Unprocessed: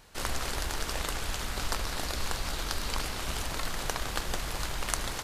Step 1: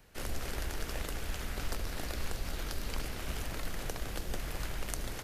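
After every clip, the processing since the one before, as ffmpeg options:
-filter_complex "[0:a]equalizer=f=1k:t=o:w=1:g=-7,equalizer=f=4k:t=o:w=1:g=-6,equalizer=f=8k:t=o:w=1:g=-6,acrossover=split=110|790|3100[a][b][c][d];[c]alimiter=level_in=7dB:limit=-24dB:level=0:latency=1:release=301,volume=-7dB[e];[a][b][e][d]amix=inputs=4:normalize=0,volume=-2dB"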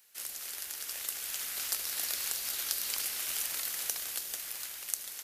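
-af "dynaudnorm=f=230:g=11:m=7dB,aderivative,volume=6dB"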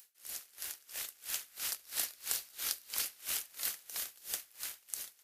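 -filter_complex "[0:a]acrossover=split=110|3600[a][b][c];[c]acompressor=mode=upward:threshold=-56dB:ratio=2.5[d];[a][b][d]amix=inputs=3:normalize=0,aeval=exprs='val(0)*pow(10,-26*(0.5-0.5*cos(2*PI*3*n/s))/20)':c=same,volume=1.5dB"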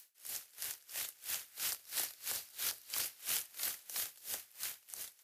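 -filter_complex "[0:a]afreqshift=49,acrossover=split=1400[a][b];[b]alimiter=limit=-22dB:level=0:latency=1:release=110[c];[a][c]amix=inputs=2:normalize=0"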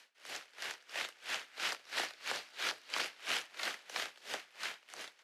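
-af "highpass=270,lowpass=2.9k,volume=10.5dB"

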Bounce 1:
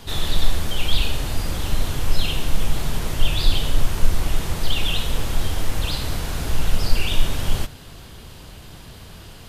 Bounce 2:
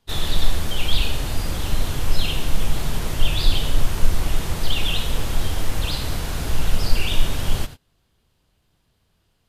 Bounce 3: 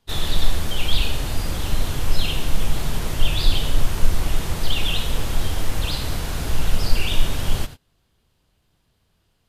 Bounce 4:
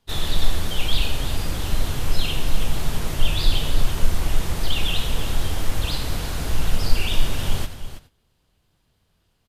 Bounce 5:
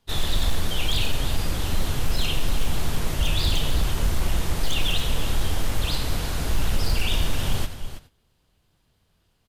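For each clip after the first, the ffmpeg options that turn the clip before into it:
-af "agate=range=-26dB:threshold=-30dB:ratio=16:detection=peak"
-af anull
-af "aecho=1:1:327:0.251,volume=-1dB"
-af "aeval=exprs='0.211*(abs(mod(val(0)/0.211+3,4)-2)-1)':c=same"

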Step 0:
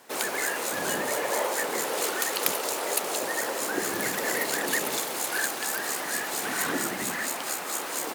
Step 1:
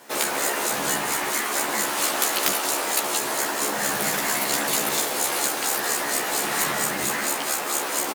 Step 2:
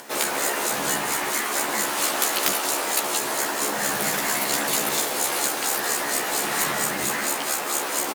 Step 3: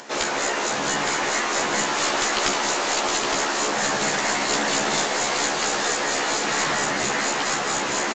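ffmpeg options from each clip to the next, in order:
-filter_complex "[0:a]afftfilt=real='re*lt(hypot(re,im),0.126)':imag='im*lt(hypot(re,im),0.126)':win_size=1024:overlap=0.75,aeval=exprs='0.447*(cos(1*acos(clip(val(0)/0.447,-1,1)))-cos(1*PI/2))+0.00251*(cos(8*acos(clip(val(0)/0.447,-1,1)))-cos(8*PI/2))':c=same,asplit=2[a][b];[b]adelay=14,volume=-2dB[c];[a][c]amix=inputs=2:normalize=0,volume=4dB"
-af "acompressor=mode=upward:threshold=-37dB:ratio=2.5"
-af "aresample=16000,aeval=exprs='clip(val(0),-1,0.0891)':c=same,aresample=44100,aecho=1:1:865:0.596,volume=2dB"

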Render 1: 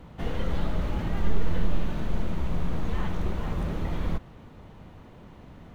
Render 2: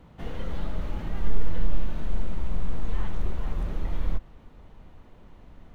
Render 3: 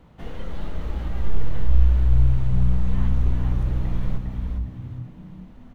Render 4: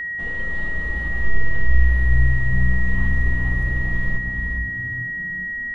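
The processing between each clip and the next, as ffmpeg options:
-af "asubboost=boost=4.5:cutoff=51,volume=-5dB"
-filter_complex "[0:a]asplit=6[a][b][c][d][e][f];[b]adelay=406,afreqshift=-62,volume=-5dB[g];[c]adelay=812,afreqshift=-124,volume=-13dB[h];[d]adelay=1218,afreqshift=-186,volume=-20.9dB[i];[e]adelay=1624,afreqshift=-248,volume=-28.9dB[j];[f]adelay=2030,afreqshift=-310,volume=-36.8dB[k];[a][g][h][i][j][k]amix=inputs=6:normalize=0"
-af "aeval=exprs='val(0)+0.0562*sin(2*PI*1900*n/s)':c=same"

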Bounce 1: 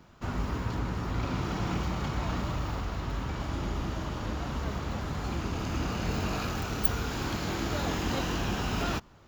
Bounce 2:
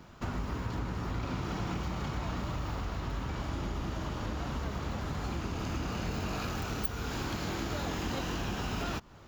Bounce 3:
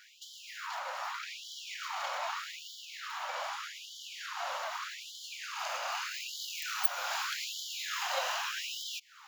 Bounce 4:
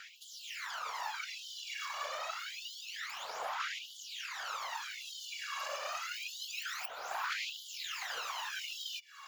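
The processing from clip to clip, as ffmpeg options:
-af "acompressor=threshold=-37dB:ratio=3,volume=3.5dB"
-af "afftfilt=real='re*gte(b*sr/1024,500*pow(3000/500,0.5+0.5*sin(2*PI*0.82*pts/sr)))':imag='im*gte(b*sr/1024,500*pow(3000/500,0.5+0.5*sin(2*PI*0.82*pts/sr)))':win_size=1024:overlap=0.75,volume=6dB"
-filter_complex "[0:a]acrossover=split=850|3000[a][b][c];[a]acompressor=threshold=-51dB:ratio=4[d];[b]acompressor=threshold=-45dB:ratio=4[e];[c]acompressor=threshold=-50dB:ratio=4[f];[d][e][f]amix=inputs=3:normalize=0,afftfilt=real='hypot(re,im)*cos(2*PI*random(0))':imag='hypot(re,im)*sin(2*PI*random(1))':win_size=512:overlap=0.75,aphaser=in_gain=1:out_gain=1:delay=1.8:decay=0.67:speed=0.27:type=sinusoidal,volume=7dB"

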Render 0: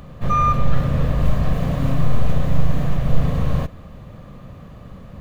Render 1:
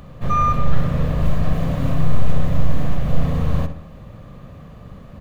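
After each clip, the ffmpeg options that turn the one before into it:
-filter_complex "[0:a]asplit=2[a][b];[b]adelay=62,lowpass=f=3.3k:p=1,volume=-9.5dB,asplit=2[c][d];[d]adelay=62,lowpass=f=3.3k:p=1,volume=0.52,asplit=2[e][f];[f]adelay=62,lowpass=f=3.3k:p=1,volume=0.52,asplit=2[g][h];[h]adelay=62,lowpass=f=3.3k:p=1,volume=0.52,asplit=2[i][j];[j]adelay=62,lowpass=f=3.3k:p=1,volume=0.52,asplit=2[k][l];[l]adelay=62,lowpass=f=3.3k:p=1,volume=0.52[m];[a][c][e][g][i][k][m]amix=inputs=7:normalize=0,volume=-1dB"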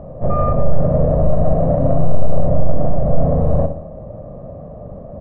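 -af "lowpass=f=630:t=q:w=4.9,aemphasis=mode=production:type=cd,acontrast=25,volume=-1dB"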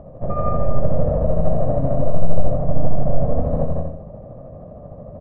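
-filter_complex "[0:a]tremolo=f=13:d=0.46,asplit=2[a][b];[b]aecho=0:1:169.1|256.6:0.708|0.355[c];[a][c]amix=inputs=2:normalize=0,volume=-4dB"

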